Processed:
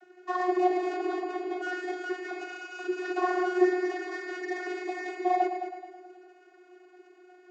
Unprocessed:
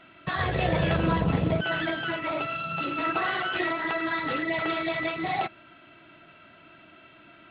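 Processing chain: median filter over 15 samples; vocoder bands 32, saw 363 Hz; multi-head echo 0.107 s, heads first and second, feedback 46%, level -11 dB

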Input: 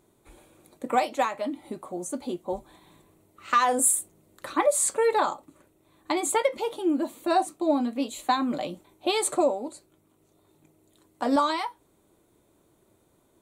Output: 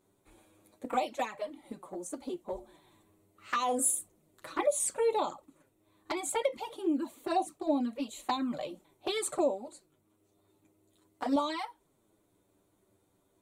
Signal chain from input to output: 2.36–4.64 de-hum 73.24 Hz, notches 20; envelope flanger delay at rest 10.6 ms, full sweep at -19.5 dBFS; gain -4 dB

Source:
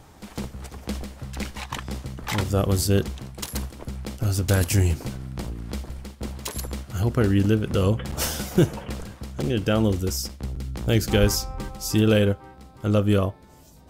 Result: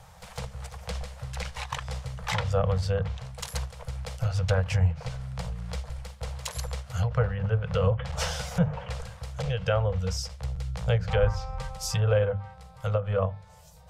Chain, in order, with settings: treble ducked by the level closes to 1400 Hz, closed at -15.5 dBFS; Chebyshev band-stop 180–470 Hz, order 4; notches 50/100/150/200 Hz; ending taper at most 180 dB/s

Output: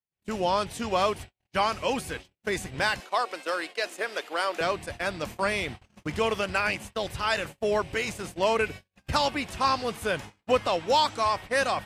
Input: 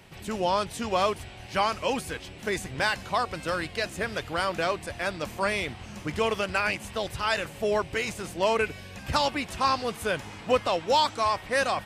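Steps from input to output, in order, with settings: gate -37 dBFS, range -50 dB; 3–4.61 HPF 330 Hz 24 dB/oct

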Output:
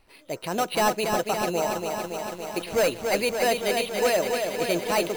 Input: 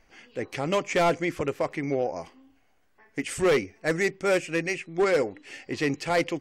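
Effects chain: careless resampling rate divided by 8×, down filtered, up hold; wide varispeed 1.24×; lo-fi delay 0.282 s, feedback 80%, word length 8-bit, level -5 dB

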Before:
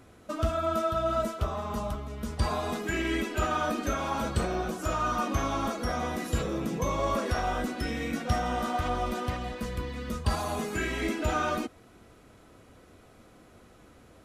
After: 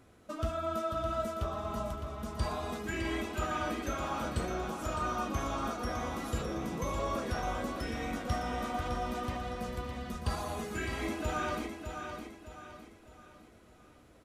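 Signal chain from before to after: feedback echo 0.61 s, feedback 40%, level -7 dB; gain -6 dB

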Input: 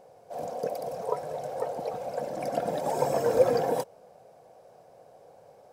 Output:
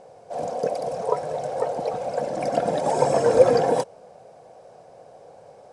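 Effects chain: steep low-pass 10000 Hz 48 dB/oct; gain +6.5 dB

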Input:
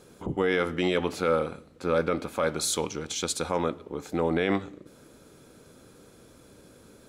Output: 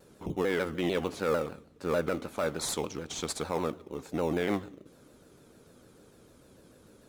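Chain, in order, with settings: in parallel at -10 dB: sample-and-hold 14×; on the sum: shaped vibrato saw down 6.7 Hz, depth 160 cents; gain -6 dB

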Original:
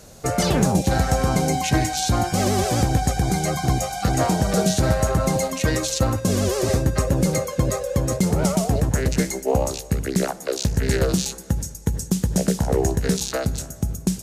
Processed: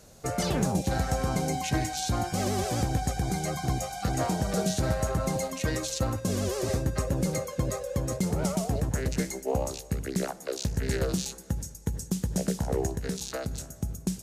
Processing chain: 12.86–13.51 compressor 2:1, threshold -22 dBFS, peak gain reduction 4.5 dB; gain -8 dB

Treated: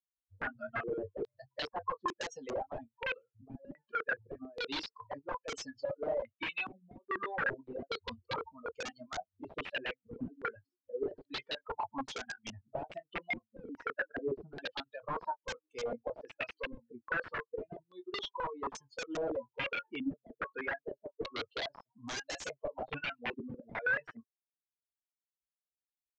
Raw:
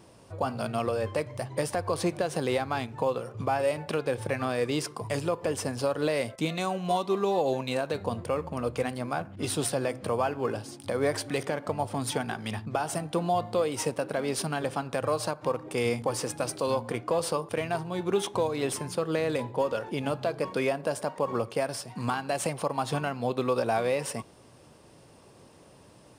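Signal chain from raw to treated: per-bin expansion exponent 3; reverb removal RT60 1.3 s; resonant low shelf 260 Hz -13 dB, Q 3; reverse; compressor 8:1, threshold -41 dBFS, peak gain reduction 23.5 dB; reverse; soft clip -35 dBFS, distortion -21 dB; doubler 22 ms -13 dB; wrapped overs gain 41 dB; air absorption 160 m; stepped low-pass 2.4 Hz 250–6600 Hz; gain +8 dB

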